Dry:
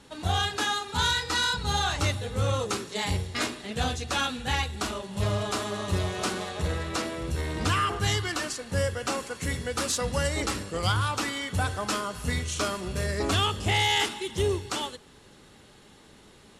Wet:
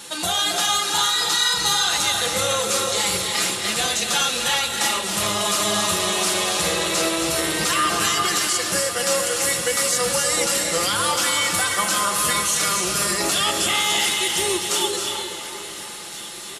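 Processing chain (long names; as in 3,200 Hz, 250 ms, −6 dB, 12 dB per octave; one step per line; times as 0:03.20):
RIAA equalisation recording
comb filter 5.8 ms, depth 54%
in parallel at −1 dB: downward compressor, threshold −36 dBFS, peak gain reduction 20.5 dB
on the sum: brickwall limiter −18 dBFS, peak gain reduction 13 dB
delay that swaps between a low-pass and a high-pass 706 ms, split 1,800 Hz, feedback 70%, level −13 dB
on a send at −1.5 dB: convolution reverb RT60 1.3 s, pre-delay 214 ms
on the sum: downsampling to 32,000 Hz
level +5.5 dB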